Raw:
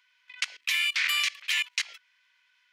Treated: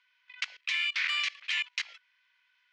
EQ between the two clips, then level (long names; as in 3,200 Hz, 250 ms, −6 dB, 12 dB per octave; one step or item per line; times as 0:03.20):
band-pass filter 490–7,700 Hz
high-frequency loss of the air 98 metres
−2.0 dB